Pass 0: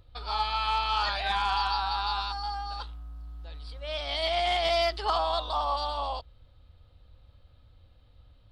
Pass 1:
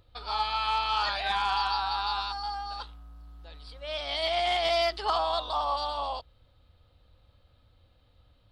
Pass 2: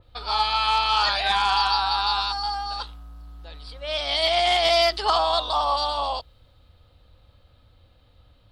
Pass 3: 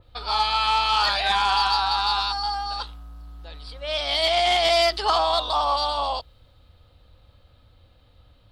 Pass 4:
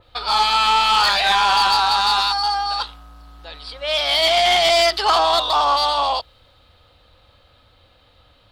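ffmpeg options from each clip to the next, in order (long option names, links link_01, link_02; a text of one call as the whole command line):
ffmpeg -i in.wav -af "lowshelf=frequency=110:gain=-8" out.wav
ffmpeg -i in.wav -af "adynamicequalizer=threshold=0.00631:dfrequency=3600:dqfactor=0.7:tfrequency=3600:tqfactor=0.7:attack=5:release=100:ratio=0.375:range=2.5:mode=boostabove:tftype=highshelf,volume=6dB" out.wav
ffmpeg -i in.wav -af "asoftclip=type=tanh:threshold=-11dB,volume=1dB" out.wav
ffmpeg -i in.wav -filter_complex "[0:a]asplit=2[link_01][link_02];[link_02]highpass=frequency=720:poles=1,volume=11dB,asoftclip=type=tanh:threshold=-11dB[link_03];[link_01][link_03]amix=inputs=2:normalize=0,lowpass=frequency=6300:poles=1,volume=-6dB,volume=2.5dB" out.wav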